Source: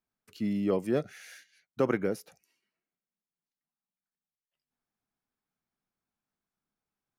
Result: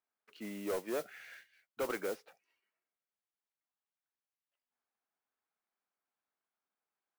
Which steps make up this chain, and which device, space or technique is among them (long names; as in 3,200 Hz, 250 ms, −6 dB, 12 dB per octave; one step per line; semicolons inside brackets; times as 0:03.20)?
carbon microphone (band-pass filter 490–2,600 Hz; soft clipping −30 dBFS, distortion −10 dB; noise that follows the level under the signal 14 dB)